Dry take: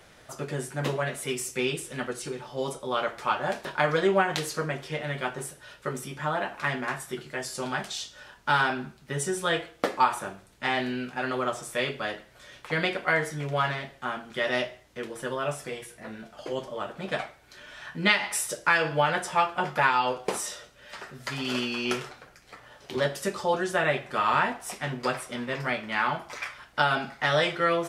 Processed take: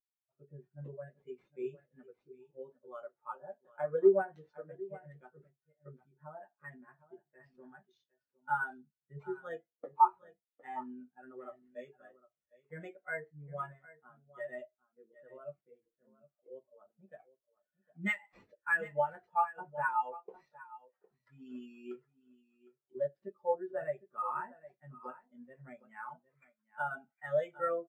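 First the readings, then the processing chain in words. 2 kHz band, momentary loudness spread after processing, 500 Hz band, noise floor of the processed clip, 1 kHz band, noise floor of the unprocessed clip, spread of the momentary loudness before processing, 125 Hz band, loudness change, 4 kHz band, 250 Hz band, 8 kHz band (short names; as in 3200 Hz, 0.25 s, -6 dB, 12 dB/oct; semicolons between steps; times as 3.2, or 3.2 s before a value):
-13.5 dB, 21 LU, -8.0 dB, under -85 dBFS, -9.0 dB, -55 dBFS, 14 LU, -17.5 dB, -8.0 dB, under -30 dB, -12.5 dB, under -30 dB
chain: echo 0.758 s -7.5 dB; sample-rate reducer 10000 Hz, jitter 0%; spectral expander 2.5:1; gain -7 dB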